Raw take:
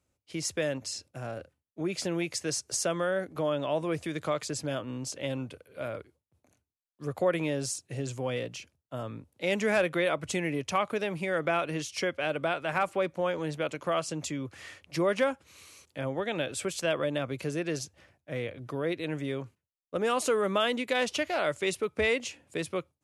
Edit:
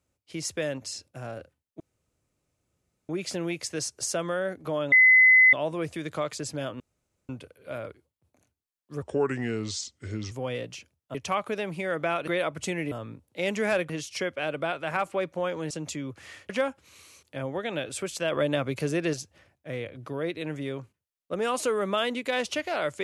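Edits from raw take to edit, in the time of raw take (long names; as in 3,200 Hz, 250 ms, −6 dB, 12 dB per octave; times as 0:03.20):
0:01.80: splice in room tone 1.29 s
0:03.63: insert tone 2,030 Hz −13 dBFS 0.61 s
0:04.90–0:05.39: fill with room tone
0:07.12–0:08.13: play speed 78%
0:08.96–0:09.94: swap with 0:10.58–0:11.71
0:13.52–0:14.06: remove
0:14.85–0:15.12: remove
0:16.95–0:17.76: clip gain +4.5 dB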